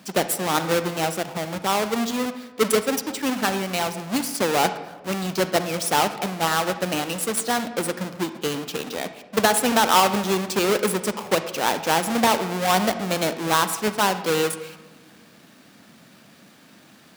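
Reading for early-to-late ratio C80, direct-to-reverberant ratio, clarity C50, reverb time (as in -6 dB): 13.0 dB, 10.5 dB, 11.0 dB, 1.2 s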